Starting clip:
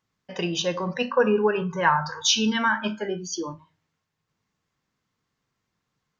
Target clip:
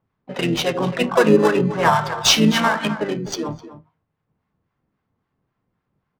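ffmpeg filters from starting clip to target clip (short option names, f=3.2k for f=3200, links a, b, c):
-filter_complex "[0:a]aecho=1:1:254:0.224,asplit=2[a][b];[b]acrusher=samples=20:mix=1:aa=0.000001,volume=-10dB[c];[a][c]amix=inputs=2:normalize=0,asplit=3[d][e][f];[e]asetrate=33038,aresample=44100,atempo=1.33484,volume=-7dB[g];[f]asetrate=58866,aresample=44100,atempo=0.749154,volume=-12dB[h];[d][g][h]amix=inputs=3:normalize=0,adynamicsmooth=sensitivity=5:basefreq=1.9k,acrossover=split=830[i][j];[i]aeval=exprs='val(0)*(1-0.5/2+0.5/2*cos(2*PI*3.7*n/s))':c=same[k];[j]aeval=exprs='val(0)*(1-0.5/2-0.5/2*cos(2*PI*3.7*n/s))':c=same[l];[k][l]amix=inputs=2:normalize=0,volume=6dB"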